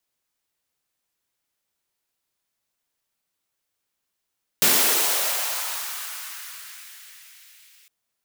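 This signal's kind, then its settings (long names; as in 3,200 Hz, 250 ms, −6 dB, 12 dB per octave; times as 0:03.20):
filter sweep on noise white, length 3.26 s highpass, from 160 Hz, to 2,300 Hz, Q 1.6, linear, gain ramp −39 dB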